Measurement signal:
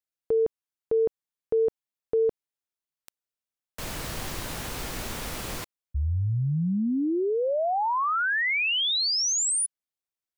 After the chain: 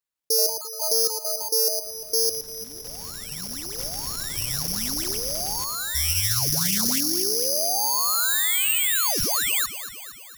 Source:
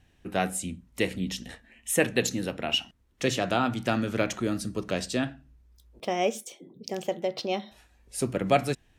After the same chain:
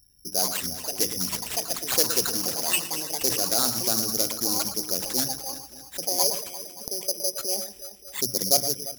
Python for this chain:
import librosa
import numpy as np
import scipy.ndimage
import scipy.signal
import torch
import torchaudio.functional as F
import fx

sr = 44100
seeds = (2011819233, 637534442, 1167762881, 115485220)

y = fx.envelope_sharpen(x, sr, power=2.0)
y = fx.echo_pitch(y, sr, ms=169, semitones=6, count=3, db_per_echo=-6.0)
y = fx.echo_alternate(y, sr, ms=115, hz=2500.0, feedback_pct=76, wet_db=-10.5)
y = (np.kron(y[::8], np.eye(8)[0]) * 8)[:len(y)]
y = fx.doppler_dist(y, sr, depth_ms=0.21)
y = y * librosa.db_to_amplitude(-6.0)